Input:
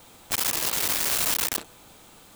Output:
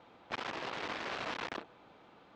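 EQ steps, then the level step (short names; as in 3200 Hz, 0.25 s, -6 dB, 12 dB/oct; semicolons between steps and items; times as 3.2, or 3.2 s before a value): HPF 340 Hz 6 dB/oct; air absorption 180 m; tape spacing loss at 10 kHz 24 dB; -1.0 dB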